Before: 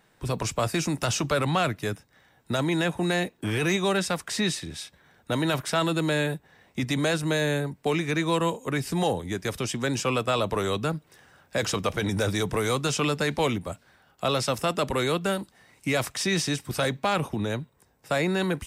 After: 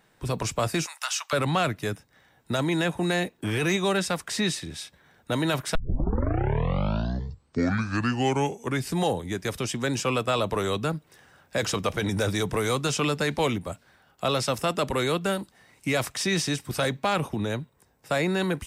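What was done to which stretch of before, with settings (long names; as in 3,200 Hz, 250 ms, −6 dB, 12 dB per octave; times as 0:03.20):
0:00.86–0:01.33: inverse Chebyshev high-pass filter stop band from 290 Hz, stop band 60 dB
0:05.75: tape start 3.17 s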